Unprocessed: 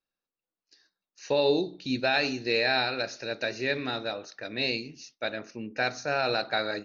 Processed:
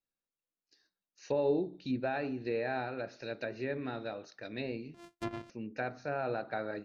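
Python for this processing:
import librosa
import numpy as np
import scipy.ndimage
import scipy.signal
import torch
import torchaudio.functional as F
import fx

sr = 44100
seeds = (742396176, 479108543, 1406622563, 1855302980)

y = fx.sample_sort(x, sr, block=128, at=(4.94, 5.5))
y = fx.env_lowpass_down(y, sr, base_hz=1500.0, full_db=-25.5)
y = fx.low_shelf(y, sr, hz=480.0, db=6.0)
y = F.gain(torch.from_numpy(y), -8.5).numpy()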